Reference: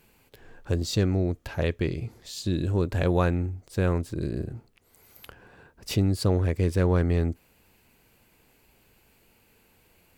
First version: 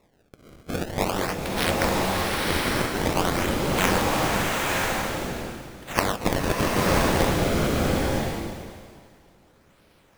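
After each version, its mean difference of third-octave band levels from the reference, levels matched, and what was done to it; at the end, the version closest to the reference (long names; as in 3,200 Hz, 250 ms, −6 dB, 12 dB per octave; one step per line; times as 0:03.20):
17.0 dB: compressing power law on the bin magnitudes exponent 0.14
sample-and-hold swept by an LFO 28×, swing 160% 0.48 Hz
slow-attack reverb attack 990 ms, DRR −3.5 dB
level −1.5 dB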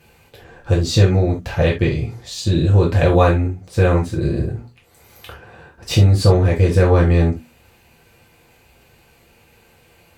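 3.0 dB: high-shelf EQ 11,000 Hz −11.5 dB
mains-hum notches 60/120/180/240 Hz
reverb whose tail is shaped and stops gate 100 ms falling, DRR −4 dB
level +5.5 dB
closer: second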